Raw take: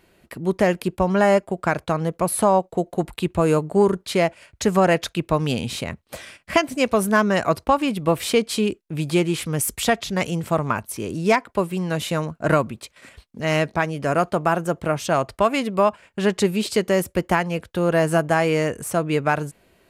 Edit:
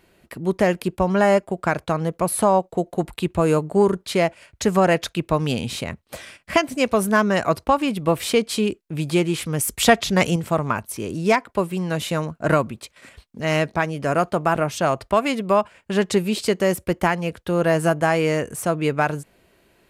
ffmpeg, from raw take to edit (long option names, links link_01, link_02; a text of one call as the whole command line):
ffmpeg -i in.wav -filter_complex "[0:a]asplit=4[link_01][link_02][link_03][link_04];[link_01]atrim=end=9.802[link_05];[link_02]atrim=start=9.798:end=10.362,asetpts=PTS-STARTPTS,volume=5dB[link_06];[link_03]atrim=start=10.358:end=14.552[link_07];[link_04]atrim=start=14.828[link_08];[link_05][link_06]acrossfade=duration=0.004:curve1=hsin:curve2=hsin[link_09];[link_09][link_07]acrossfade=duration=0.004:curve1=hsin:curve2=hsin[link_10];[link_10][link_08]acrossfade=duration=0.004:curve1=hsin:curve2=hsin" out.wav